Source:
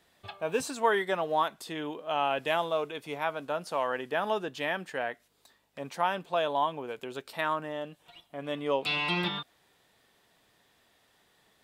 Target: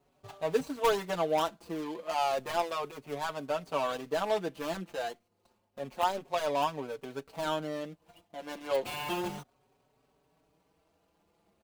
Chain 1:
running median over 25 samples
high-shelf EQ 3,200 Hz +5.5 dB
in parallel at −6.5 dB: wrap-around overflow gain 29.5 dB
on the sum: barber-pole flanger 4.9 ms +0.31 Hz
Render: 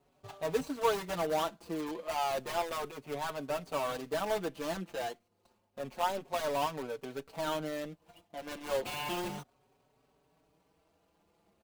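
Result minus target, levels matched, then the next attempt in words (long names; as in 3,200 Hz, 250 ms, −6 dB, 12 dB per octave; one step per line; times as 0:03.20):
wrap-around overflow: distortion +23 dB
running median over 25 samples
high-shelf EQ 3,200 Hz +5.5 dB
in parallel at −6.5 dB: wrap-around overflow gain 18 dB
on the sum: barber-pole flanger 4.9 ms +0.31 Hz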